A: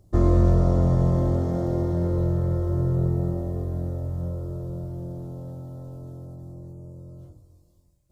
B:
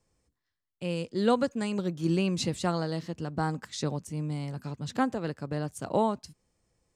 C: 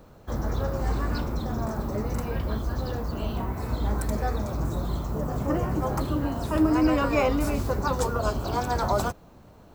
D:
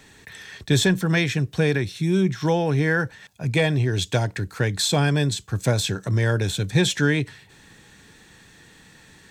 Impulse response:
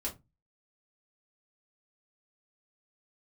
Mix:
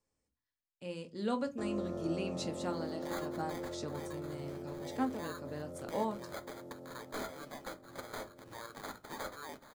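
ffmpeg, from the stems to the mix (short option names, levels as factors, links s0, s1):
-filter_complex "[0:a]highpass=210,adelay=1450,volume=0.398,asplit=2[s0][s1];[s1]volume=0.224[s2];[1:a]volume=0.211,asplit=2[s3][s4];[s4]volume=0.668[s5];[3:a]aderivative,acrusher=samples=16:mix=1:aa=0.000001,adelay=2350,volume=0.708,asplit=2[s6][s7];[s7]volume=0.15[s8];[s0][s6]amix=inputs=2:normalize=0,acompressor=threshold=0.00631:ratio=6,volume=1[s9];[4:a]atrim=start_sample=2205[s10];[s2][s5][s8]amix=inputs=3:normalize=0[s11];[s11][s10]afir=irnorm=-1:irlink=0[s12];[s3][s9][s12]amix=inputs=3:normalize=0,lowshelf=f=78:g=-9.5"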